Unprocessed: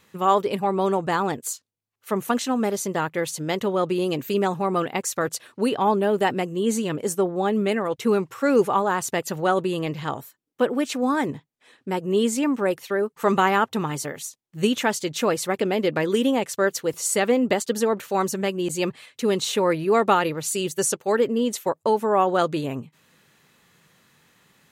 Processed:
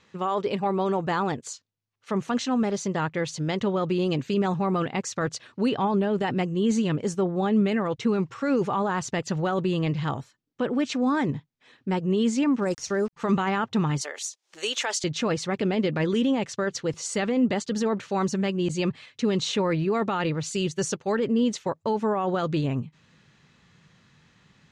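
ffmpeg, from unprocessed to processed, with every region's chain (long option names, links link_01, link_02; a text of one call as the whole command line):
ffmpeg -i in.wav -filter_complex "[0:a]asettb=1/sr,asplit=3[link_01][link_02][link_03];[link_01]atrim=end=12.624[link_04];[link_02]atrim=start=12.62:end=13.13,asetpts=PTS-STARTPTS,afade=type=in:duration=0.004:curve=qsin,afade=type=out:start_time=0.506:duration=0.004:curve=qsin,highshelf=frequency=4400:width_type=q:width=3:gain=10.5,aeval=exprs='val(0)*gte(abs(val(0)),0.00891)':channel_layout=same[link_05];[link_03]atrim=start=13.126[link_06];[link_04][link_05]acrossfade=duration=0.004:curve1=hsin:curve2=qsin[link_07];[link_07][link_06]acrossfade=duration=0.004:curve1=qsin:curve2=hsin,asettb=1/sr,asplit=3[link_08][link_09][link_10];[link_08]atrim=end=14.014[link_11];[link_09]atrim=start=14.01:end=15.04,asetpts=PTS-STARTPTS,afade=type=in:duration=0.004:curve=qsin,afade=type=out:start_time=1.026:duration=0.004:curve=qsin,highpass=frequency=420:width=0.5412,highpass=frequency=420:width=1.3066,aemphasis=mode=production:type=bsi,acompressor=mode=upward:threshold=-29dB:ratio=2.5:attack=3.2:release=140:knee=2.83:detection=peak[link_12];[link_10]atrim=start=15.036[link_13];[link_11][link_12]acrossfade=duration=0.004:curve1=hsin:curve2=qsin[link_14];[link_14][link_13]acrossfade=duration=0.004:curve1=qsin:curve2=hsin,lowpass=frequency=6400:width=0.5412,lowpass=frequency=6400:width=1.3066,alimiter=limit=-15.5dB:level=0:latency=1:release=14,asubboost=boost=2.5:cutoff=230,volume=-1dB" out.wav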